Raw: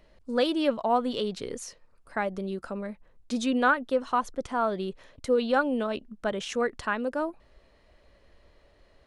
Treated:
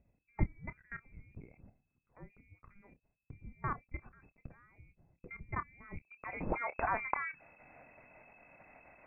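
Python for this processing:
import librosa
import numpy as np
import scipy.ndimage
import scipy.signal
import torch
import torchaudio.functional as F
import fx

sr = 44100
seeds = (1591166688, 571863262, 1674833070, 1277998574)

y = fx.level_steps(x, sr, step_db=22)
y = fx.doubler(y, sr, ms=28.0, db=-13.0)
y = fx.freq_invert(y, sr, carrier_hz=2600)
y = fx.dynamic_eq(y, sr, hz=860.0, q=0.8, threshold_db=-39.0, ratio=4.0, max_db=3)
y = fx.filter_sweep_lowpass(y, sr, from_hz=180.0, to_hz=930.0, start_s=5.5, end_s=6.5, q=0.7)
y = F.gain(torch.from_numpy(y), 18.0).numpy()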